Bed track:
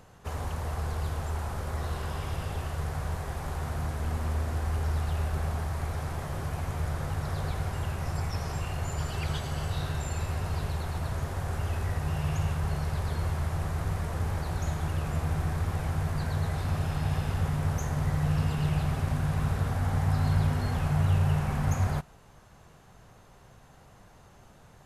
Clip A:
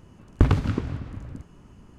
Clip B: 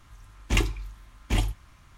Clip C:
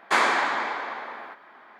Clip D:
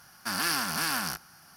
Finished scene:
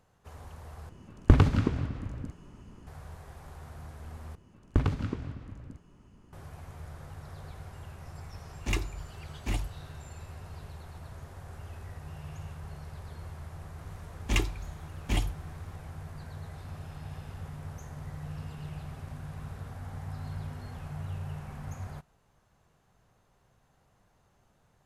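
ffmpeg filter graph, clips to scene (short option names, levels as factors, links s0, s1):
-filter_complex "[1:a]asplit=2[s0][s1];[2:a]asplit=2[s2][s3];[0:a]volume=0.224[s4];[s2]bandreject=f=3200:w=9.4[s5];[s4]asplit=3[s6][s7][s8];[s6]atrim=end=0.894[s9];[s0]atrim=end=1.98,asetpts=PTS-STARTPTS,volume=0.944[s10];[s7]atrim=start=2.866:end=4.354[s11];[s1]atrim=end=1.98,asetpts=PTS-STARTPTS,volume=0.422[s12];[s8]atrim=start=6.326[s13];[s5]atrim=end=1.97,asetpts=PTS-STARTPTS,volume=0.473,afade=t=in:d=0.004:c=hsin,afade=t=out:st=1.966:d=0.004:c=hsin,adelay=8160[s14];[s3]atrim=end=1.97,asetpts=PTS-STARTPTS,volume=0.668,afade=t=in:d=0.004:c=hsin,afade=t=out:st=1.966:d=0.004:c=hsin,adelay=13790[s15];[s9][s10]acrossfade=d=0.004:c1=hsin:c2=hsin[s16];[s16][s11]acrossfade=d=0.004:c1=hsin:c2=hsin[s17];[s17][s12]acrossfade=d=0.004:c1=hsin:c2=hsin[s18];[s18][s13]acrossfade=d=0.004:c1=hsin:c2=hsin[s19];[s19][s14][s15]amix=inputs=3:normalize=0"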